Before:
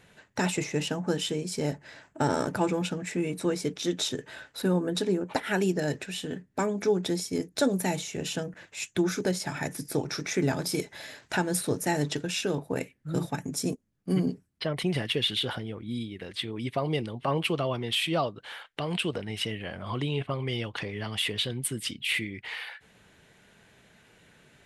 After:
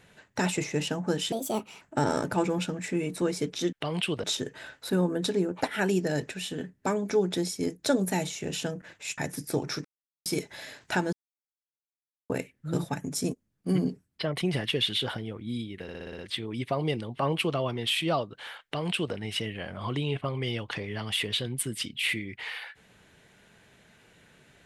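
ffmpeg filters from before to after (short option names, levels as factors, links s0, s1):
-filter_complex "[0:a]asplit=16[s0][s1][s2][s3][s4][s5][s6][s7][s8][s9][s10][s11][s12][s13][s14][s15];[s0]atrim=end=1.324[s16];[s1]atrim=start=1.32:end=2.05,asetpts=PTS-STARTPTS,asetrate=64827,aresample=44100[s17];[s2]atrim=start=2.046:end=3.962[s18];[s3]atrim=start=18.688:end=19.202[s19];[s4]atrim=start=3.958:end=8.902[s20];[s5]atrim=start=9.588:end=10.26,asetpts=PTS-STARTPTS,afade=t=out:st=0.668:d=0.004:c=hsin[s21];[s6]atrim=start=10.26:end=10.67,asetpts=PTS-STARTPTS,volume=0[s22];[s7]atrim=start=10.67:end=11.54,asetpts=PTS-STARTPTS,afade=t=in:d=0.004:c=hsin,afade=t=out:st=0.866:d=0.004:c=hsin[s23];[s8]atrim=start=11.54:end=12.71,asetpts=PTS-STARTPTS,volume=0[s24];[s9]atrim=start=12.71:end=16.302,asetpts=PTS-STARTPTS,afade=t=in:d=0.004:c=hsin[s25];[s10]atrim=start=16.238:end=16.302[s26];[s11]atrim=start=16.238:end=16.302[s27];[s12]atrim=start=16.238:end=16.302[s28];[s13]atrim=start=16.238:end=16.302[s29];[s14]atrim=start=16.238:end=16.302[s30];[s15]atrim=start=16.238[s31];[s16][s17]acrossfade=d=0.004:c1=hsin:c2=hsin[s32];[s32][s18]acrossfade=d=0.004:c1=hsin:c2=hsin[s33];[s33][s19]acrossfade=d=0.004:c1=hsin:c2=hsin[s34];[s34][s20]acrossfade=d=0.004:c1=hsin:c2=hsin[s35];[s21][s22][s23][s24][s25]concat=n=5:v=0:a=1[s36];[s35][s36]acrossfade=d=0.004:c1=hsin:c2=hsin[s37];[s37][s26]acrossfade=d=0.004:c1=hsin:c2=hsin[s38];[s38][s27]acrossfade=d=0.004:c1=hsin:c2=hsin[s39];[s39][s28]acrossfade=d=0.004:c1=hsin:c2=hsin[s40];[s40][s29]acrossfade=d=0.004:c1=hsin:c2=hsin[s41];[s41][s30]acrossfade=d=0.004:c1=hsin:c2=hsin[s42];[s42][s31]acrossfade=d=0.004:c1=hsin:c2=hsin"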